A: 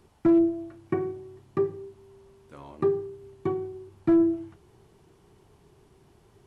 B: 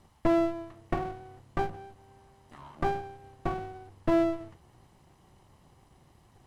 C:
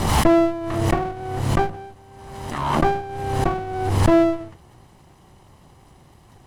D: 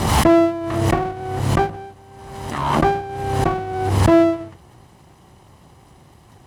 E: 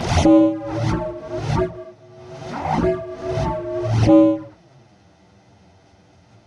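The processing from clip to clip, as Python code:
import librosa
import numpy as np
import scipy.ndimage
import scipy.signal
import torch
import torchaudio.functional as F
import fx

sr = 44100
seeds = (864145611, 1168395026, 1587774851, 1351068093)

y1 = fx.lower_of_two(x, sr, delay_ms=0.99)
y2 = fx.pre_swell(y1, sr, db_per_s=40.0)
y2 = y2 * 10.0 ** (9.0 / 20.0)
y3 = scipy.signal.sosfilt(scipy.signal.butter(2, 45.0, 'highpass', fs=sr, output='sos'), y2)
y3 = y3 * 10.0 ** (2.5 / 20.0)
y4 = fx.partial_stretch(y3, sr, pct=84)
y4 = fx.env_flanger(y4, sr, rest_ms=11.0, full_db=-13.0)
y4 = y4 * 10.0 ** (2.5 / 20.0)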